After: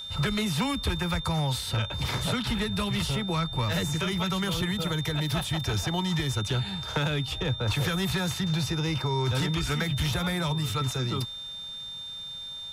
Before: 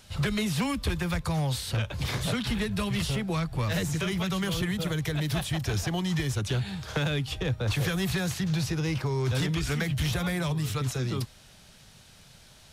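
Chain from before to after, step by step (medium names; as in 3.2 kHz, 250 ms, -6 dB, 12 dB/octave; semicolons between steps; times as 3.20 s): whistle 3.6 kHz -36 dBFS; small resonant body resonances 920/1300 Hz, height 10 dB, ringing for 45 ms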